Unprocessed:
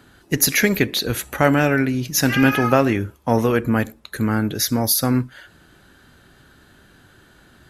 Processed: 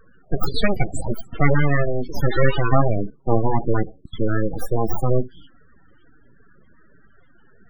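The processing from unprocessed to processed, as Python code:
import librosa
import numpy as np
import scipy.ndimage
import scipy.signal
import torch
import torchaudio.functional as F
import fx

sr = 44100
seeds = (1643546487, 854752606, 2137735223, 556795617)

y = np.abs(x)
y = fx.spec_topn(y, sr, count=16)
y = y * 10.0 ** (3.5 / 20.0)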